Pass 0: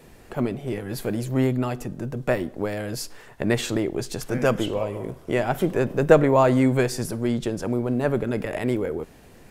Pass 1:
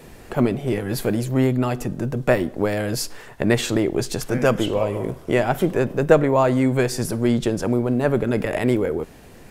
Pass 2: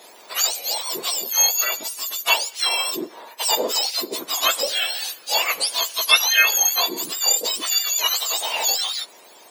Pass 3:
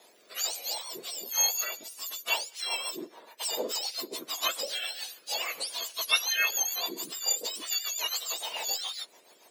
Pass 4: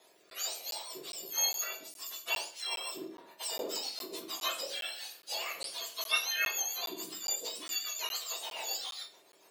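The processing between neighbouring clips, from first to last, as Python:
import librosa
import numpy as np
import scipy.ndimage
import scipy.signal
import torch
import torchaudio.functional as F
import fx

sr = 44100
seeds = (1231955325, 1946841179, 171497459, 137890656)

y1 = fx.rider(x, sr, range_db=3, speed_s=0.5)
y1 = F.gain(torch.from_numpy(y1), 3.0).numpy()
y2 = fx.octave_mirror(y1, sr, pivot_hz=1300.0)
y2 = scipy.signal.sosfilt(scipy.signal.butter(4, 430.0, 'highpass', fs=sr, output='sos'), y2)
y2 = F.gain(torch.from_numpy(y2), 4.5).numpy()
y3 = fx.rotary_switch(y2, sr, hz=1.2, then_hz=7.0, switch_at_s=1.81)
y3 = F.gain(torch.from_numpy(y3), -8.0).numpy()
y4 = fx.room_shoebox(y3, sr, seeds[0], volume_m3=49.0, walls='mixed', distance_m=0.52)
y4 = fx.buffer_crackle(y4, sr, first_s=0.3, period_s=0.41, block=512, kind='zero')
y4 = F.gain(torch.from_numpy(y4), -6.5).numpy()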